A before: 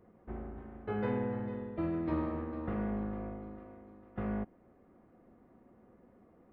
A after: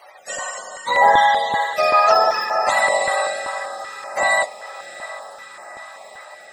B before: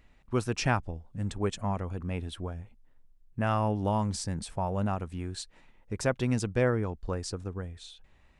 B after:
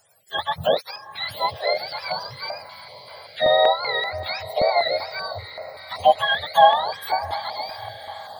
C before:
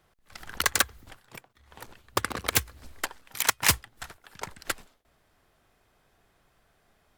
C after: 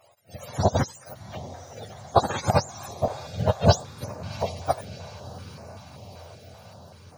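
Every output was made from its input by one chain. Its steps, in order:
frequency axis turned over on the octave scale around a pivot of 640 Hz
low shelf with overshoot 440 Hz −12 dB, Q 3
feedback delay with all-pass diffusion 716 ms, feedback 69%, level −14.5 dB
dynamic equaliser 690 Hz, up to +5 dB, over −45 dBFS, Q 1.8
notch on a step sequencer 5.2 Hz 200–3,400 Hz
normalise the peak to −1.5 dBFS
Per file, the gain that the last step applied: +20.0, +8.0, +13.0 decibels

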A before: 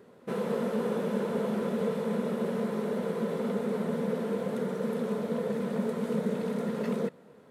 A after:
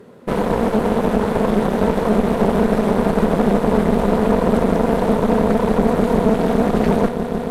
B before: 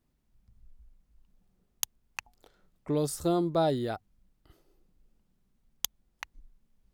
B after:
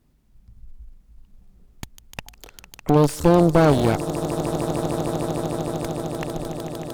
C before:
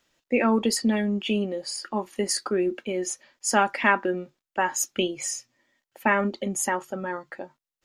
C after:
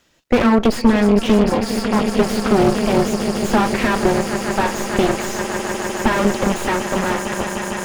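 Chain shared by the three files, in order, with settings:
downward compressor 1.5 to 1, threshold −30 dBFS
low-shelf EQ 320 Hz +5 dB
echo that builds up and dies away 151 ms, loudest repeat 8, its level −15 dB
harmonic generator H 6 −21 dB, 8 −11 dB, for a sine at −9.5 dBFS
slew-rate limiting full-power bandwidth 76 Hz
normalise the peak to −3 dBFS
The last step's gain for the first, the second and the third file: +9.5, +9.0, +9.0 decibels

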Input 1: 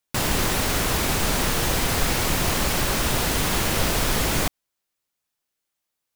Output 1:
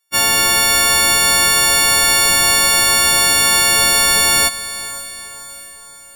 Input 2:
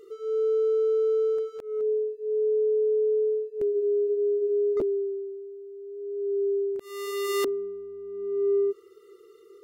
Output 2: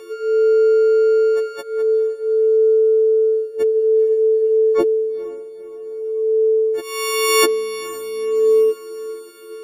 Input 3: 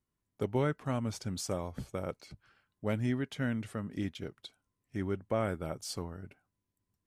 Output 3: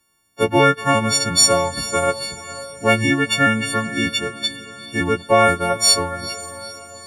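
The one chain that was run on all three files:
every partial snapped to a pitch grid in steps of 4 semitones
mid-hump overdrive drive 8 dB, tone 4,100 Hz, clips at −0.5 dBFS
feedback delay with all-pass diffusion 462 ms, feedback 52%, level −15 dB
normalise the peak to −2 dBFS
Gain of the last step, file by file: +1.5, +11.0, +15.5 decibels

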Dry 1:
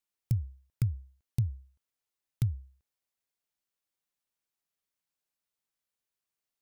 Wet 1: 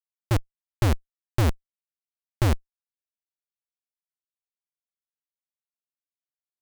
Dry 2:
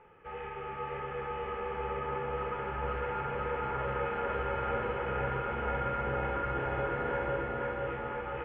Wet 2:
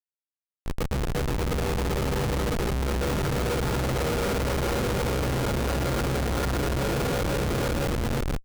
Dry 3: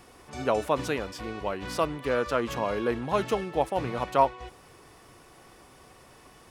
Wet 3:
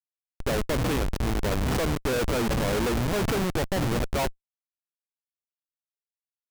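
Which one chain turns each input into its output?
parametric band 970 Hz −6.5 dB 0.86 octaves
automatic gain control gain up to 13 dB
in parallel at −2 dB: brickwall limiter −13.5 dBFS
on the sum: comparator with hysteresis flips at −16.5 dBFS
loudness normalisation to −27 LKFS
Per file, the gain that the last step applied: +5.0, −7.0, −7.0 decibels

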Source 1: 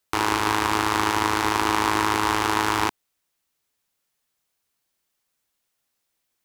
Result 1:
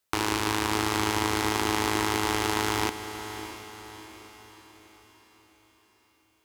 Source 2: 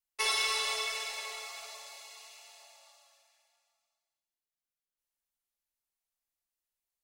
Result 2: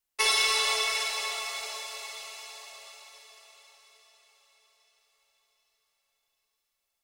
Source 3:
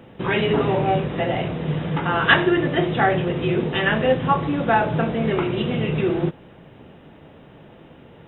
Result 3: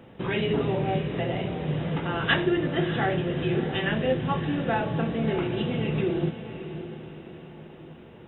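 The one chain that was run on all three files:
dynamic equaliser 1,100 Hz, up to −7 dB, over −33 dBFS, Q 0.74
on a send: feedback delay with all-pass diffusion 635 ms, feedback 47%, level −11 dB
on the sum: loudness normalisation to −27 LKFS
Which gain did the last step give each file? −1.0, +6.0, −4.0 decibels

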